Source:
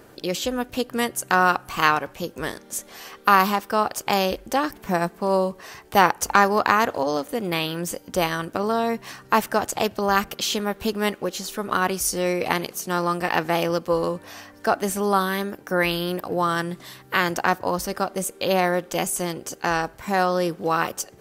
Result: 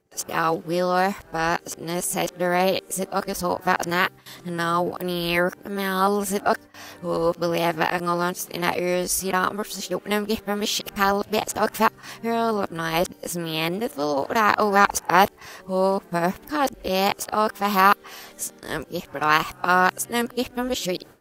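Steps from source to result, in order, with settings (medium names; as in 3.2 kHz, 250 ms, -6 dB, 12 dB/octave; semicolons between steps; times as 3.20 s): reverse the whole clip; gate with hold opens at -34 dBFS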